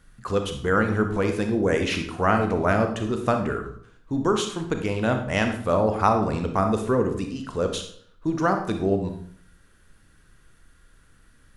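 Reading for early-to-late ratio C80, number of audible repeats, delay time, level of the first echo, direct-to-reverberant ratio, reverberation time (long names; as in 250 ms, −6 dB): 10.5 dB, no echo audible, no echo audible, no echo audible, 5.0 dB, 0.60 s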